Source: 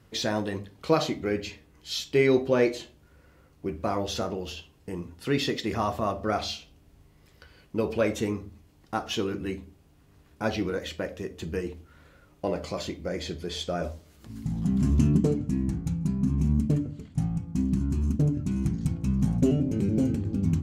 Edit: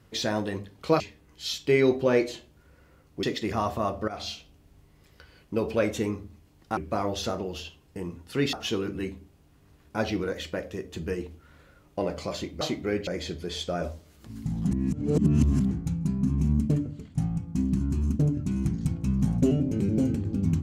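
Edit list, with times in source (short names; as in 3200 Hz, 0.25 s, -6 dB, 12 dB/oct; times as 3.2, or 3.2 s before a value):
1–1.46 move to 13.07
3.69–5.45 move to 8.99
6.3–6.56 fade in, from -15.5 dB
14.71–15.71 reverse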